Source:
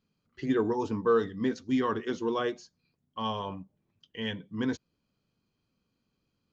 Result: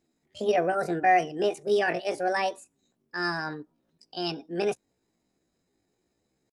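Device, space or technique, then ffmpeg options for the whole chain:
chipmunk voice: -af "asetrate=70004,aresample=44100,atempo=0.629961,volume=3dB"

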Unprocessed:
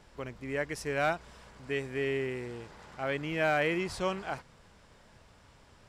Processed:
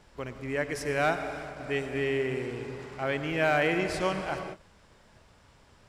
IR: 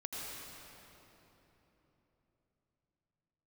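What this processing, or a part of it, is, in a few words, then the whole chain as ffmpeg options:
keyed gated reverb: -filter_complex "[0:a]asplit=3[a][b][c];[1:a]atrim=start_sample=2205[d];[b][d]afir=irnorm=-1:irlink=0[e];[c]apad=whole_len=259529[f];[e][f]sidechaingate=range=-33dB:threshold=-53dB:ratio=16:detection=peak,volume=-4.5dB[g];[a][g]amix=inputs=2:normalize=0"

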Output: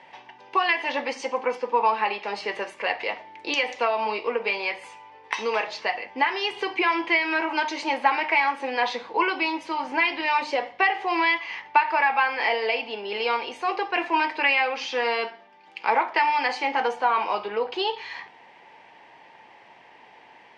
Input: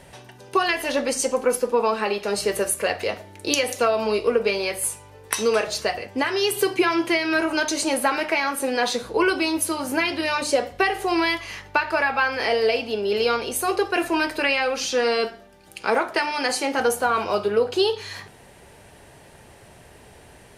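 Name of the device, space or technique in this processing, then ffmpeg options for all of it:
phone earpiece: -af "highpass=400,equalizer=f=410:t=q:w=4:g=-7,equalizer=f=600:t=q:w=4:g=-7,equalizer=f=900:t=q:w=4:g=8,equalizer=f=1.4k:t=q:w=4:g=-7,equalizer=f=2.1k:t=q:w=4:g=5,equalizer=f=4k:t=q:w=4:g=-6,lowpass=f=4.2k:w=0.5412,lowpass=f=4.2k:w=1.3066"

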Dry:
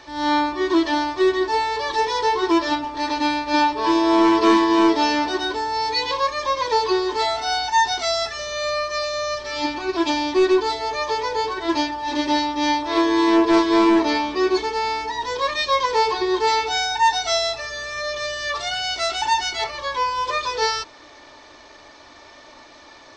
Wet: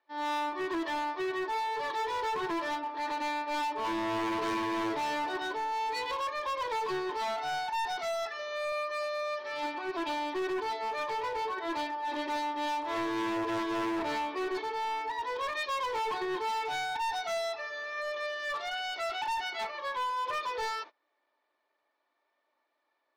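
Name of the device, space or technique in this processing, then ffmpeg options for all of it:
walkie-talkie: -filter_complex "[0:a]highpass=410,lowpass=2.6k,asoftclip=type=hard:threshold=-23.5dB,agate=range=-25dB:threshold=-37dB:ratio=16:detection=peak,asettb=1/sr,asplit=3[a][b][c];[a]atrim=end=8.724[d];[b]atrim=start=8.72:end=9.48,asetpts=PTS-STARTPTS,afade=t=in:d=0.004:c=qsin,afade=t=out:st=0.756:d=0.004:c=qsin,highpass=f=120:w=0.5412,highpass=f=120:w=1.3066[e];[c]atrim=start=9.476[f];[d][e]acrossfade=d=0.004:c1=hsin:c2=qsin[g];[g][f]acrossfade=d=0.004:c1=qsin:c2=hsin,volume=-6.5dB"

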